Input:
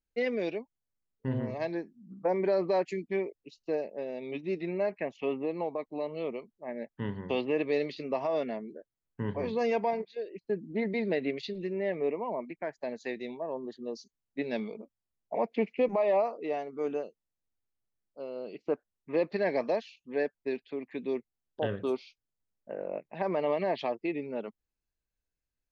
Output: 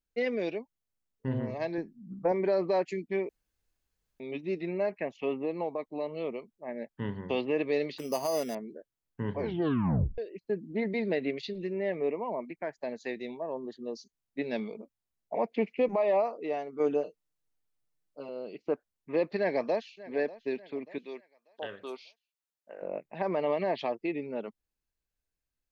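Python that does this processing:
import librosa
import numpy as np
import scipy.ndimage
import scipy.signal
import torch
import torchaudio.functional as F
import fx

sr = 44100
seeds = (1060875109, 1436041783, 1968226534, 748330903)

y = fx.low_shelf(x, sr, hz=160.0, db=12.0, at=(1.78, 2.32))
y = fx.resample_bad(y, sr, factor=8, down='none', up='hold', at=(7.98, 8.55))
y = fx.comb(y, sr, ms=6.6, depth=0.84, at=(16.79, 18.29))
y = fx.echo_throw(y, sr, start_s=19.38, length_s=0.59, ms=590, feedback_pct=50, wet_db=-18.0)
y = fx.highpass(y, sr, hz=1200.0, slope=6, at=(20.98, 22.82))
y = fx.edit(y, sr, fx.room_tone_fill(start_s=3.29, length_s=0.91),
    fx.tape_stop(start_s=9.39, length_s=0.79), tone=tone)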